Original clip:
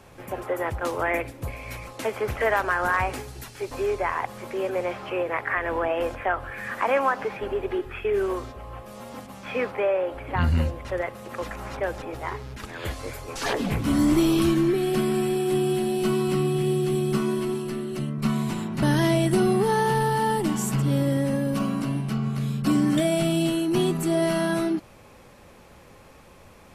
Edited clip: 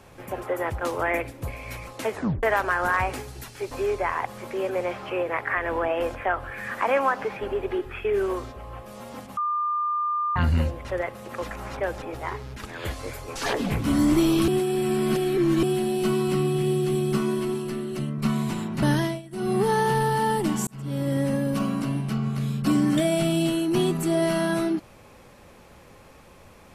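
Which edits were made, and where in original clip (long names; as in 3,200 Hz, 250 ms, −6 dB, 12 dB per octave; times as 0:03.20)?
0:02.11: tape stop 0.32 s
0:09.37–0:10.36: beep over 1,200 Hz −22.5 dBFS
0:14.48–0:15.63: reverse
0:18.92–0:19.61: duck −21.5 dB, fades 0.30 s
0:20.67–0:21.21: fade in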